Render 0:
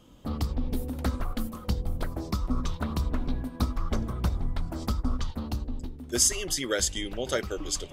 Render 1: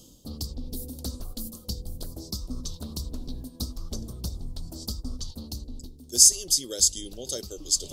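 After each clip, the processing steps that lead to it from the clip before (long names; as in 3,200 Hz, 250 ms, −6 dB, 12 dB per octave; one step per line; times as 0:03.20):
drawn EQ curve 470 Hz 0 dB, 1,400 Hz −14 dB, 2,100 Hz −17 dB, 4,500 Hz +14 dB
reversed playback
upward compression, threshold −26 dBFS
reversed playback
level −6.5 dB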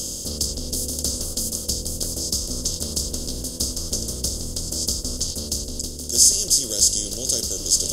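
compressor on every frequency bin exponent 0.4
level −1 dB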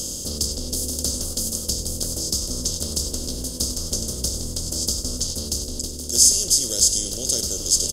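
single-tap delay 98 ms −12.5 dB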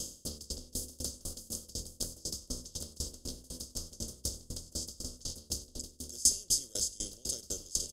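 tremolo with a ramp in dB decaying 4 Hz, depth 26 dB
level −7.5 dB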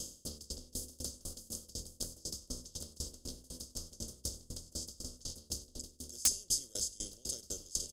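wrap-around overflow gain 13 dB
level −3.5 dB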